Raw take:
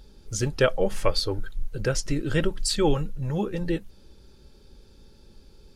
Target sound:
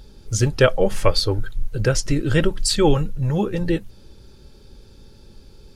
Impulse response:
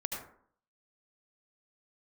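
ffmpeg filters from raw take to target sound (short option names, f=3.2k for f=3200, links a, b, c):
-af "equalizer=f=110:w=4.1:g=7,volume=5.5dB"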